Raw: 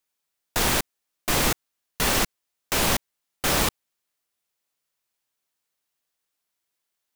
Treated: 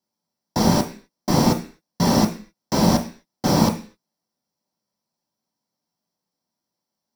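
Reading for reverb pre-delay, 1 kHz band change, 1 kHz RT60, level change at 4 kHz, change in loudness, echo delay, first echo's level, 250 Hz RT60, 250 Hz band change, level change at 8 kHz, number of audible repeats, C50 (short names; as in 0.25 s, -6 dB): 3 ms, +4.5 dB, 0.40 s, -1.5 dB, +3.5 dB, none, none, 0.45 s, +13.5 dB, -3.5 dB, none, 12.0 dB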